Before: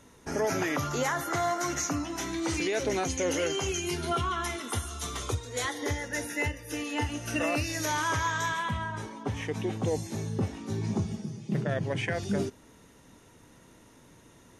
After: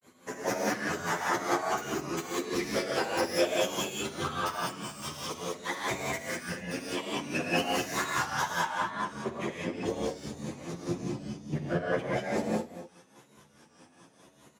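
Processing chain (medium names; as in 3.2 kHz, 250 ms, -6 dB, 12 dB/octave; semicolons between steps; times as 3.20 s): tracing distortion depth 0.075 ms; granulator 152 ms, grains 4.8 per s, spray 16 ms, pitch spread up and down by 3 st; whisper effect; Bessel high-pass 170 Hz, order 2; echo from a far wall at 43 m, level -14 dB; gated-style reverb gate 220 ms rising, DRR -3 dB; endless flanger 9.8 ms +0.95 Hz; trim +3.5 dB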